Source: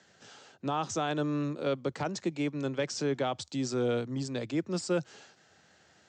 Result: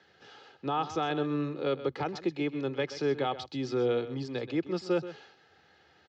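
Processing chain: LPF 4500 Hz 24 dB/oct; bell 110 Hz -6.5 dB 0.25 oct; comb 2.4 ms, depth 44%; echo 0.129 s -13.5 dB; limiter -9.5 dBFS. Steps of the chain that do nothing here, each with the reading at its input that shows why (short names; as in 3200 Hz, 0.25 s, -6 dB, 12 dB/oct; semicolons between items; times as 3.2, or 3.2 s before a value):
limiter -9.5 dBFS: input peak -17.0 dBFS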